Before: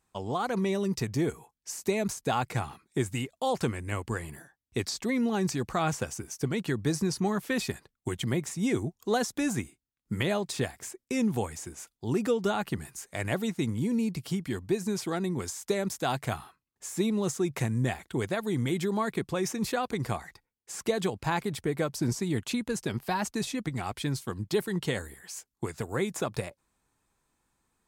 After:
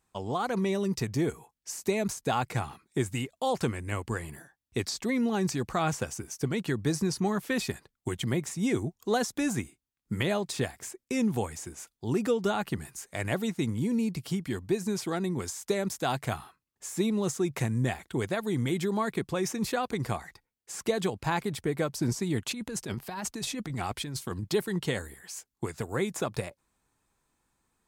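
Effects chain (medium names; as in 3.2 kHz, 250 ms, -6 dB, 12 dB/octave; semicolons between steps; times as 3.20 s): 22.45–24.53 s: compressor with a negative ratio -34 dBFS, ratio -1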